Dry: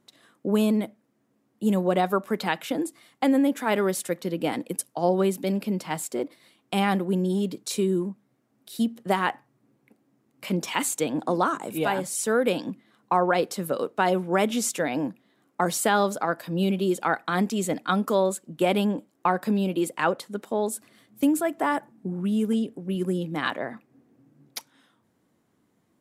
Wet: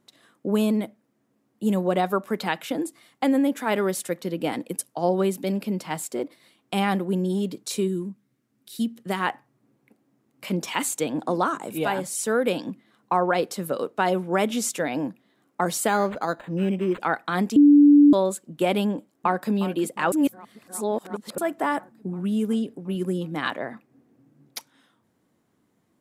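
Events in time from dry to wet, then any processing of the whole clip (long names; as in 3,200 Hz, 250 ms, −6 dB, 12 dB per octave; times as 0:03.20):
0:07.87–0:09.19: parametric band 720 Hz −13 dB → −7 dB 1.5 octaves
0:15.88–0:17.00: linearly interpolated sample-rate reduction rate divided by 8×
0:17.56–0:18.13: beep over 290 Hz −9.5 dBFS
0:18.88–0:19.50: delay throw 360 ms, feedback 75%, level −13.5 dB
0:20.12–0:21.38: reverse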